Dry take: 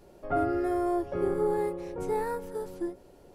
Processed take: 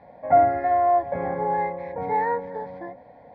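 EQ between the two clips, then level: speaker cabinet 110–2900 Hz, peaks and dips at 250 Hz +6 dB, 490 Hz +9 dB, 740 Hz +8 dB, 1100 Hz +7 dB, 2000 Hz +8 dB; fixed phaser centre 1900 Hz, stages 8; +6.5 dB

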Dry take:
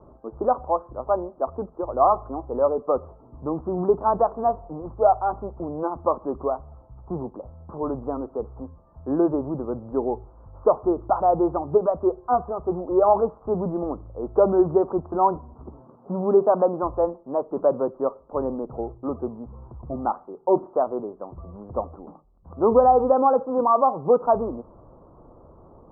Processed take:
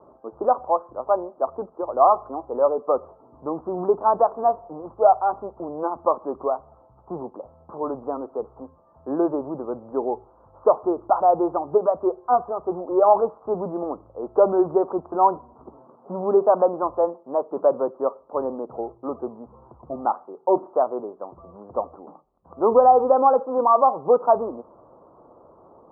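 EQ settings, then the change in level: band-pass 860 Hz, Q 0.58; +2.5 dB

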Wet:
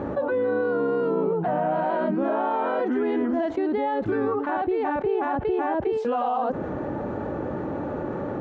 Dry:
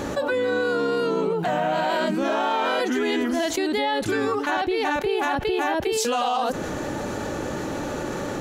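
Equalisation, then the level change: HPF 52 Hz; LPF 1100 Hz 12 dB/oct; 0.0 dB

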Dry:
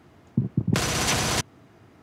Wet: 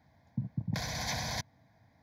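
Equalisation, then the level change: fixed phaser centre 1900 Hz, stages 8; -8.5 dB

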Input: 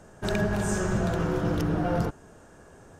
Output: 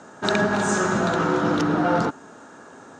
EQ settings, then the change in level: speaker cabinet 200–8100 Hz, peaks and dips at 260 Hz +8 dB, 890 Hz +6 dB, 1300 Hz +8 dB, 3900 Hz +7 dB, 6800 Hz +4 dB; bell 1900 Hz +2.5 dB; +5.0 dB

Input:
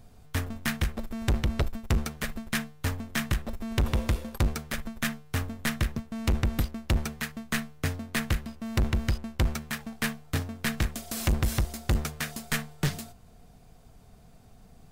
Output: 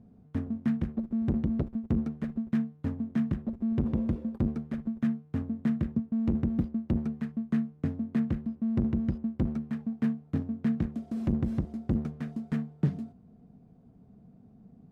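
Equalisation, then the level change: band-pass 220 Hz, Q 2; +7.0 dB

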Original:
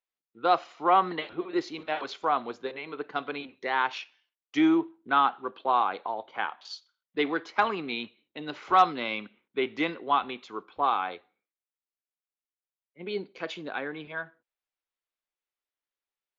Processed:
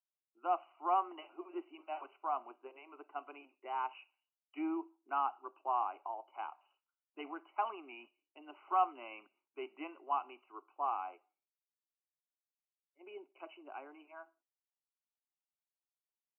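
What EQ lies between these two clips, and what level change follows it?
inverse Chebyshev high-pass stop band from 180 Hz, stop band 40 dB; brick-wall FIR low-pass 3000 Hz; fixed phaser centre 480 Hz, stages 6; -8.5 dB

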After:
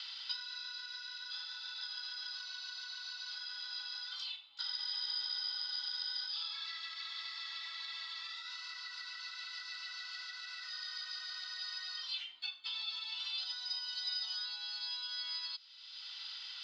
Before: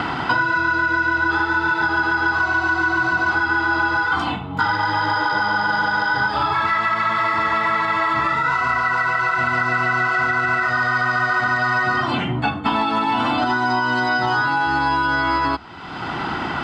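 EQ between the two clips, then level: Butterworth band-pass 4500 Hz, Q 2.2; -2.5 dB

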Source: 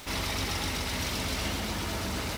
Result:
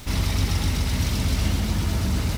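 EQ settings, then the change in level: tone controls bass +14 dB, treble +3 dB; 0.0 dB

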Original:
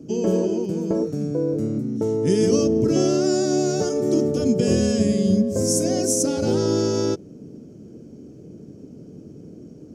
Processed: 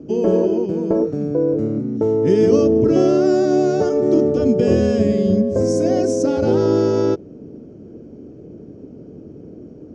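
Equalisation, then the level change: air absorption 120 m; bell 160 Hz -7.5 dB 1.6 oct; high shelf 2300 Hz -10.5 dB; +8.0 dB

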